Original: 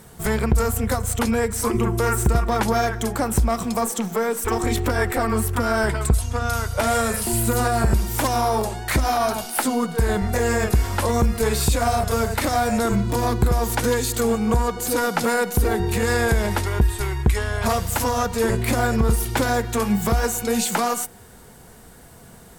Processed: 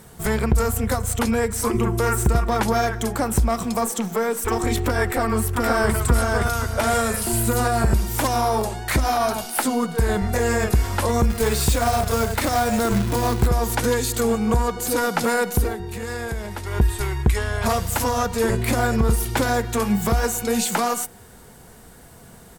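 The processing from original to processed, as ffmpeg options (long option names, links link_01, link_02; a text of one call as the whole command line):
ffmpeg -i in.wav -filter_complex "[0:a]asplit=2[link_01][link_02];[link_02]afade=type=in:start_time=5.05:duration=0.01,afade=type=out:start_time=5.97:duration=0.01,aecho=0:1:520|1040|1560|2080|2600:0.749894|0.262463|0.091862|0.0321517|0.0112531[link_03];[link_01][link_03]amix=inputs=2:normalize=0,asettb=1/sr,asplit=3[link_04][link_05][link_06];[link_04]atrim=end=11.304[link_07];[link_05]atrim=start=11.3:end=13.46,asetpts=PTS-STARTPTS,afade=type=in:duration=0.004:curve=qsin,afade=type=out:start_time=2.156:duration=0.004:curve=qsin,acrusher=bits=3:mode=log:mix=0:aa=0.000001[link_08];[link_06]atrim=start=13.456[link_09];[link_07][link_08]acrossfade=duration=0.004:curve1=hsin:curve2=qsin[link_10];[link_10][link_09]acrossfade=duration=0.004:curve1=qsin:curve2=hsin,asplit=3[link_11][link_12][link_13];[link_11]atrim=end=15.76,asetpts=PTS-STARTPTS,afade=type=out:start_time=15.58:duration=0.18:silence=0.354813[link_14];[link_12]atrim=start=15.76:end=16.62,asetpts=PTS-STARTPTS,volume=-9dB[link_15];[link_13]atrim=start=16.62,asetpts=PTS-STARTPTS,afade=type=in:duration=0.18:silence=0.354813[link_16];[link_14][link_15][link_16]concat=n=3:v=0:a=1" out.wav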